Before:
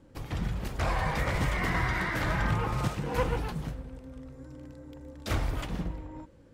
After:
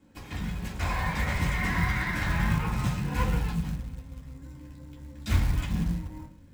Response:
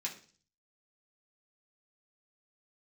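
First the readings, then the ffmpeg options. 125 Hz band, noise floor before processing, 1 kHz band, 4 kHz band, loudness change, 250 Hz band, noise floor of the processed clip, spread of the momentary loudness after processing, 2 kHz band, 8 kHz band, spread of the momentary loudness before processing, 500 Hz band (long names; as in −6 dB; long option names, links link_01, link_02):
+3.0 dB, −56 dBFS, −1.0 dB, +1.0 dB, +2.0 dB, +3.0 dB, −51 dBFS, 18 LU, +1.5 dB, +2.5 dB, 18 LU, −6.5 dB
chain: -filter_complex "[0:a]asubboost=boost=5:cutoff=170[link_01];[1:a]atrim=start_sample=2205[link_02];[link_01][link_02]afir=irnorm=-1:irlink=0,acrusher=bits=6:mode=log:mix=0:aa=0.000001"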